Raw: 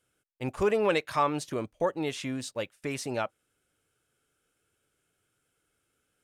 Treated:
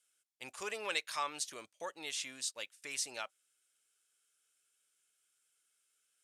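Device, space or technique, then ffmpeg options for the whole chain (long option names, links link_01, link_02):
piezo pickup straight into a mixer: -af "lowpass=8400,aderivative,volume=5.5dB"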